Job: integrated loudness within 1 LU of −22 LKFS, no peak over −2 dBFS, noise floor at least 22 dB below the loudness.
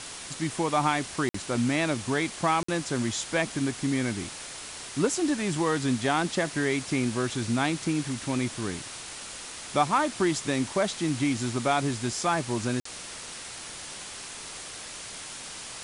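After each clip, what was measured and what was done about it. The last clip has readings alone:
number of dropouts 3; longest dropout 54 ms; background noise floor −41 dBFS; target noise floor −51 dBFS; integrated loudness −29.0 LKFS; sample peak −10.5 dBFS; target loudness −22.0 LKFS
→ repair the gap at 0:01.29/0:02.63/0:12.80, 54 ms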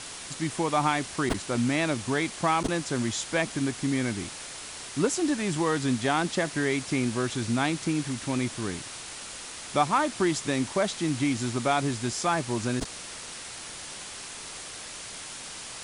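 number of dropouts 0; background noise floor −41 dBFS; target noise floor −51 dBFS
→ broadband denoise 10 dB, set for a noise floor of −41 dBFS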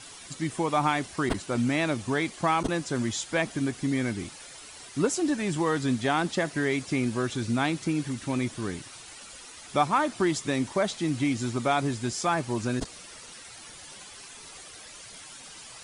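background noise floor −46 dBFS; target noise floor −50 dBFS
→ broadband denoise 6 dB, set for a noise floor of −46 dBFS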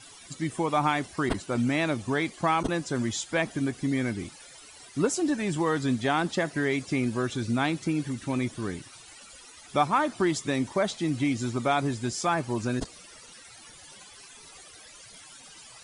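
background noise floor −50 dBFS; integrated loudness −28.0 LKFS; sample peak −11.0 dBFS; target loudness −22.0 LKFS
→ level +6 dB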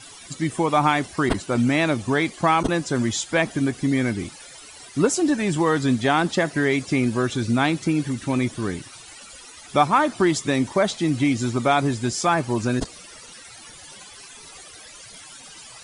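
integrated loudness −22.0 LKFS; sample peak −5.0 dBFS; background noise floor −44 dBFS

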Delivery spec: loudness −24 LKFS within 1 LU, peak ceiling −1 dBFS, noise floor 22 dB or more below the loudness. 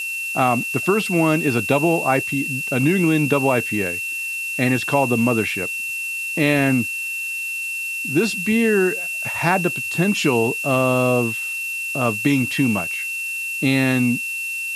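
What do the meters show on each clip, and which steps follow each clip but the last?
interfering tone 2,700 Hz; level of the tone −24 dBFS; background noise floor −27 dBFS; target noise floor −42 dBFS; integrated loudness −19.5 LKFS; sample peak −2.0 dBFS; target loudness −24.0 LKFS
→ notch filter 2,700 Hz, Q 30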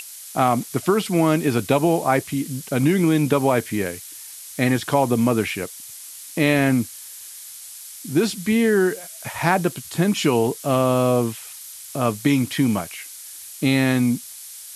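interfering tone none found; background noise floor −39 dBFS; target noise floor −43 dBFS
→ noise reduction from a noise print 6 dB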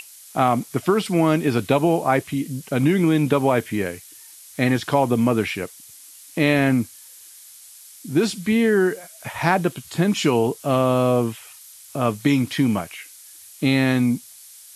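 background noise floor −45 dBFS; integrated loudness −21.0 LKFS; sample peak −3.0 dBFS; target loudness −24.0 LKFS
→ level −3 dB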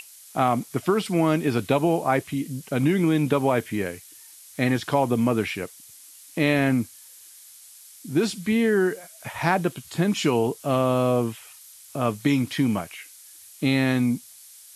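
integrated loudness −24.0 LKFS; sample peak −6.0 dBFS; background noise floor −48 dBFS

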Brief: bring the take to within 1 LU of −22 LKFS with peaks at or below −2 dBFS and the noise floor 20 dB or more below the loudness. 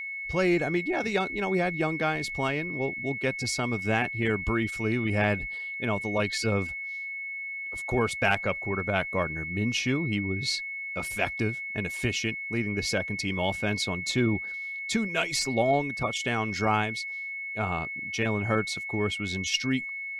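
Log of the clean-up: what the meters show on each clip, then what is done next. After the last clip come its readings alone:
interfering tone 2,200 Hz; level of the tone −33 dBFS; integrated loudness −28.0 LKFS; sample peak −10.0 dBFS; target loudness −22.0 LKFS
→ notch filter 2,200 Hz, Q 30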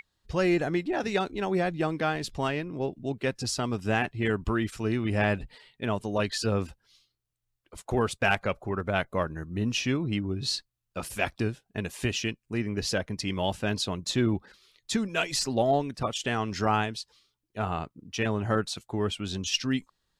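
interfering tone none found; integrated loudness −29.5 LKFS; sample peak −11.0 dBFS; target loudness −22.0 LKFS
→ level +7.5 dB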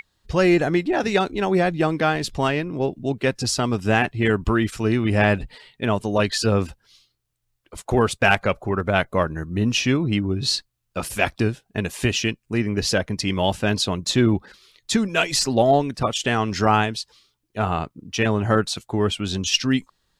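integrated loudness −22.0 LKFS; sample peak −3.5 dBFS; background noise floor −73 dBFS

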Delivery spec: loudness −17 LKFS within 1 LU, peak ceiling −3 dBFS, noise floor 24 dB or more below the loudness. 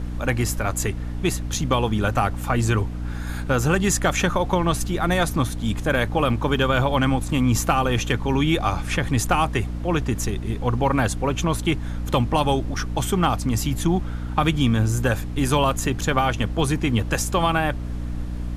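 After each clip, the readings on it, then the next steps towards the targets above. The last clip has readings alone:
mains hum 60 Hz; hum harmonics up to 300 Hz; level of the hum −26 dBFS; background noise floor −29 dBFS; target noise floor −47 dBFS; integrated loudness −22.5 LKFS; sample peak −6.0 dBFS; target loudness −17.0 LKFS
→ mains-hum notches 60/120/180/240/300 Hz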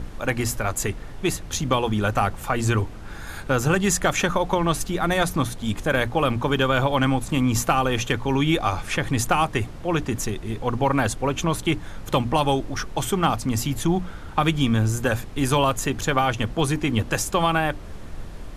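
mains hum none found; background noise floor −36 dBFS; target noise floor −48 dBFS
→ noise reduction from a noise print 12 dB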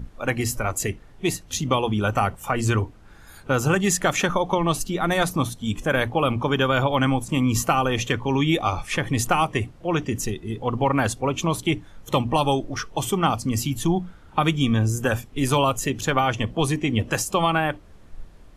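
background noise floor −47 dBFS; target noise floor −48 dBFS
→ noise reduction from a noise print 6 dB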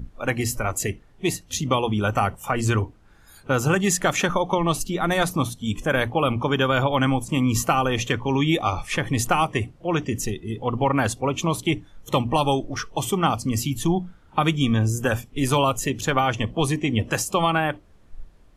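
background noise floor −52 dBFS; integrated loudness −23.5 LKFS; sample peak −6.5 dBFS; target loudness −17.0 LKFS
→ level +6.5 dB
brickwall limiter −3 dBFS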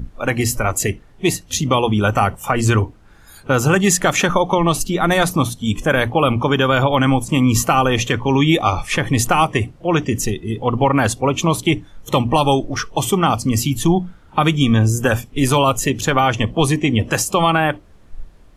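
integrated loudness −17.5 LKFS; sample peak −3.0 dBFS; background noise floor −46 dBFS

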